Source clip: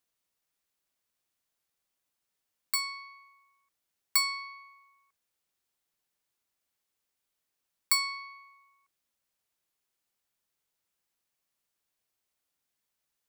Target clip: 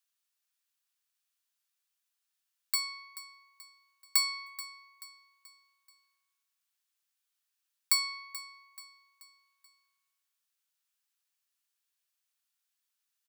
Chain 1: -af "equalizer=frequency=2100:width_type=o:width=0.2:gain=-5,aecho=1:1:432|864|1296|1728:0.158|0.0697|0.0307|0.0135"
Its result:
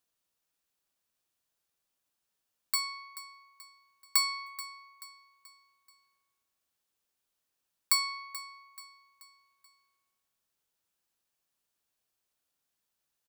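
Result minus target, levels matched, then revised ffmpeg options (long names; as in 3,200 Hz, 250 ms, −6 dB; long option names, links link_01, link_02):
1,000 Hz band +5.5 dB
-af "highpass=1400,equalizer=frequency=2100:width_type=o:width=0.2:gain=-5,aecho=1:1:432|864|1296|1728:0.158|0.0697|0.0307|0.0135"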